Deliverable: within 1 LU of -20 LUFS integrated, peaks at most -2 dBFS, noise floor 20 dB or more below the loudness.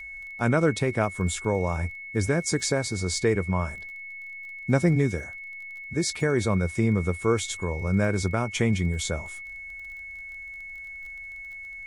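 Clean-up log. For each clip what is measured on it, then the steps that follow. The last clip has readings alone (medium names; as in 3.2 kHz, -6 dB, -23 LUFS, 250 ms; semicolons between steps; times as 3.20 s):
tick rate 21 per s; steady tone 2.2 kHz; tone level -37 dBFS; loudness -26.0 LUFS; peak level -8.5 dBFS; loudness target -20.0 LUFS
-> de-click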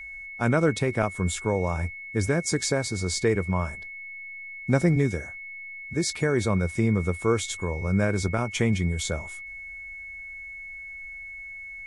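tick rate 0 per s; steady tone 2.2 kHz; tone level -37 dBFS
-> band-stop 2.2 kHz, Q 30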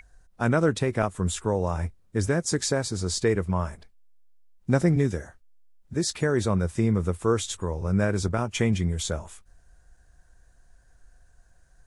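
steady tone not found; loudness -26.0 LUFS; peak level -8.5 dBFS; loudness target -20.0 LUFS
-> trim +6 dB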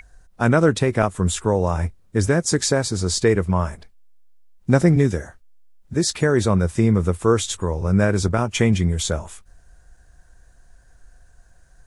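loudness -20.0 LUFS; peak level -2.5 dBFS; noise floor -53 dBFS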